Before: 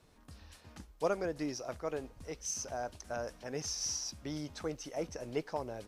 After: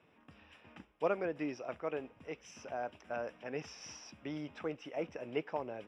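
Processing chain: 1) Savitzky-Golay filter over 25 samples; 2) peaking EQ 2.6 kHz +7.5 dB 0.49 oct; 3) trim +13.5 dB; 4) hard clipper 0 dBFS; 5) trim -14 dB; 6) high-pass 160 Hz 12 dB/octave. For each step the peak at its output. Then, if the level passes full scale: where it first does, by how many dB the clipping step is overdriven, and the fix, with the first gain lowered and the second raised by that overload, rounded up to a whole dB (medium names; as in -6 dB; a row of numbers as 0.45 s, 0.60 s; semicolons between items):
-19.5 dBFS, -19.5 dBFS, -6.0 dBFS, -6.0 dBFS, -20.0 dBFS, -20.0 dBFS; nothing clips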